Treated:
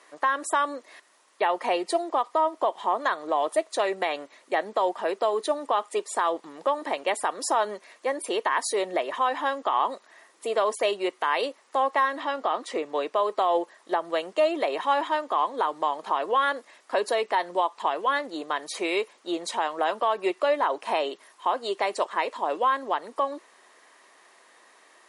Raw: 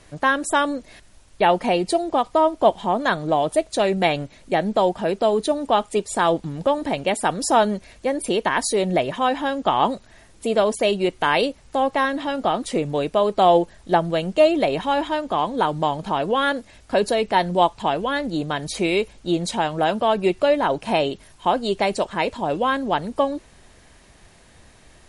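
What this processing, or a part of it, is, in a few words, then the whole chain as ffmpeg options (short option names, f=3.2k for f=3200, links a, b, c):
laptop speaker: -filter_complex "[0:a]asettb=1/sr,asplit=3[a][b][c];[a]atrim=end=12.204[d];[b]atrim=start=12.2:end=13.16,asetpts=PTS-STARTPTS,afade=t=in:d=0.004:c=qsin,afade=t=out:st=0.956:d=0.004:c=qsin,lowpass=7k[e];[c]atrim=start=13.156[f];[d][e]acrossfade=d=0.004:c1=hsin:c2=qsin[g];[g][f]acrossfade=d=0.004:c1=qsin:c2=hsin,highpass=f=340:w=0.5412,highpass=f=340:w=1.3066,equalizer=f=1.1k:t=o:w=0.5:g=10,equalizer=f=1.9k:t=o:w=0.2:g=7,alimiter=limit=-8.5dB:level=0:latency=1:release=122,volume=-5dB"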